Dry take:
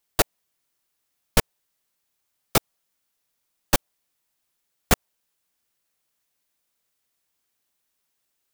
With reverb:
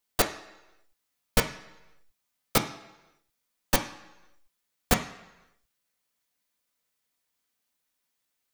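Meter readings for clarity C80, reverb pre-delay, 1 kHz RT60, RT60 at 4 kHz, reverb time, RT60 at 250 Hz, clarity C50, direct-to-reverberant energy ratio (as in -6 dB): 13.5 dB, 3 ms, 1.0 s, 0.90 s, 1.0 s, 0.85 s, 10.5 dB, 3.0 dB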